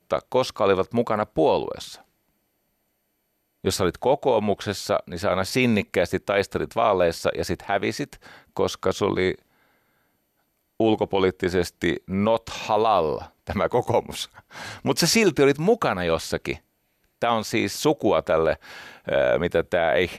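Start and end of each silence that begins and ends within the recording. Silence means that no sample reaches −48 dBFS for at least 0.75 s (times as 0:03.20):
0:02.04–0:03.64
0:09.42–0:10.80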